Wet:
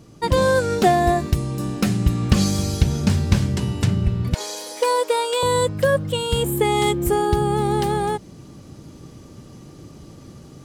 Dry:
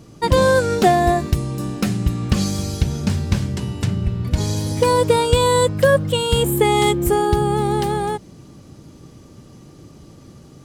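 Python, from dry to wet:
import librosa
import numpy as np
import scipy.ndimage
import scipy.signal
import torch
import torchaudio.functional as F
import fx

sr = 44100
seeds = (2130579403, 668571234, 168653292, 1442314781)

y = fx.rider(x, sr, range_db=10, speed_s=2.0)
y = fx.highpass(y, sr, hz=460.0, slope=24, at=(4.34, 5.43))
y = y * 10.0 ** (-2.0 / 20.0)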